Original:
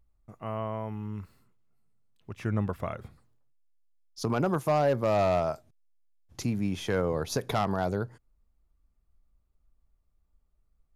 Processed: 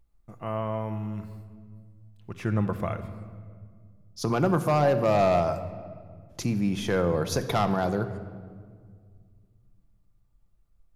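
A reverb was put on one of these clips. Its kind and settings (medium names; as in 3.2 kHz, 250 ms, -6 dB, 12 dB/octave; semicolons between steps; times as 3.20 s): simulated room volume 3100 m³, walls mixed, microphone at 0.81 m; trim +2.5 dB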